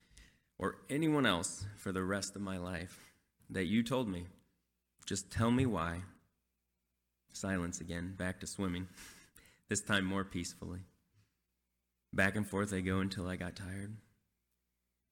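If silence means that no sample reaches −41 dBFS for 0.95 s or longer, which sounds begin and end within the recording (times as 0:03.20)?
0:07.35–0:10.79
0:12.14–0:13.95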